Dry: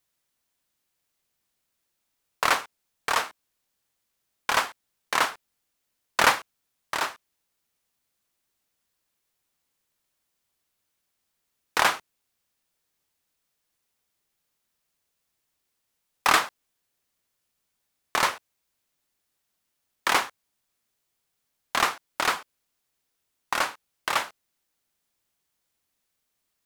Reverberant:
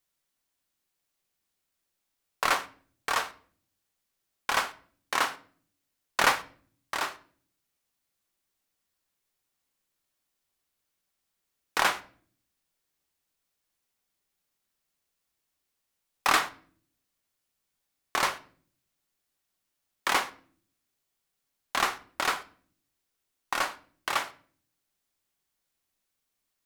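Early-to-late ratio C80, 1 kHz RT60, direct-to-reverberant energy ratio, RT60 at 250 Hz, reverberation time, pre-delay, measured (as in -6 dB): 22.0 dB, 0.40 s, 10.0 dB, 0.85 s, 0.50 s, 3 ms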